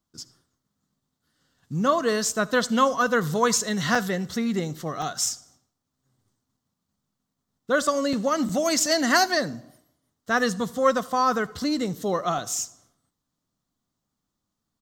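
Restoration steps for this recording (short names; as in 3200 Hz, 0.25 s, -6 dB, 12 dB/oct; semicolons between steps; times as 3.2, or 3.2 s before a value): interpolate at 0.53/3.95/5.02/6.57/8.13/8.49/12.38, 3.5 ms; inverse comb 78 ms -24 dB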